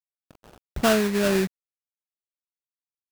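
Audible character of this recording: a quantiser's noise floor 6-bit, dither none; phasing stages 8, 1.6 Hz, lowest notch 790–1800 Hz; aliases and images of a low sample rate 2100 Hz, jitter 20%

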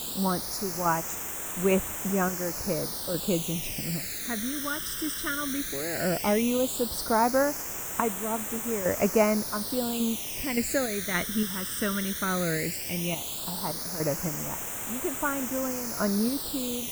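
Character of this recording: random-step tremolo, depth 75%; a quantiser's noise floor 6-bit, dither triangular; phasing stages 12, 0.15 Hz, lowest notch 770–4500 Hz

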